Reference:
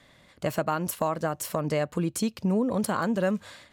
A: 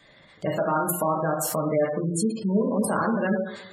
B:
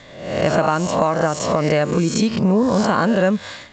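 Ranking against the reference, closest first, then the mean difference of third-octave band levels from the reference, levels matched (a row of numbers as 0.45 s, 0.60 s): B, A; 7.0 dB, 9.5 dB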